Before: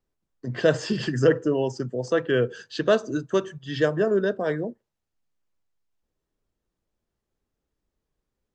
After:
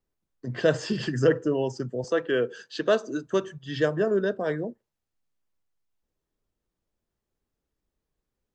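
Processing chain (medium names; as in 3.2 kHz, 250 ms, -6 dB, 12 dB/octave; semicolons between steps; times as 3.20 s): 2.04–3.27 s: high-pass 220 Hz 12 dB/octave; trim -2 dB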